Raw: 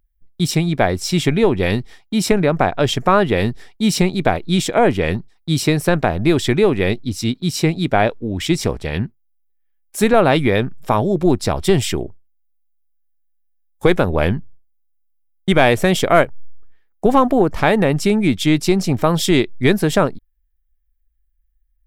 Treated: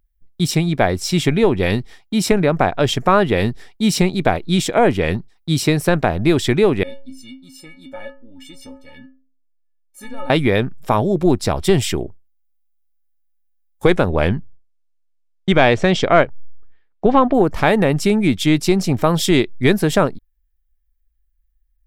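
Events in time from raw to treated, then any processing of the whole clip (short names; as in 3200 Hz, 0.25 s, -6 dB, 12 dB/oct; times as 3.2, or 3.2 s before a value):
6.83–10.3 metallic resonator 260 Hz, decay 0.43 s, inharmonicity 0.03
13.87–17.33 LPF 11000 Hz -> 4100 Hz 24 dB/oct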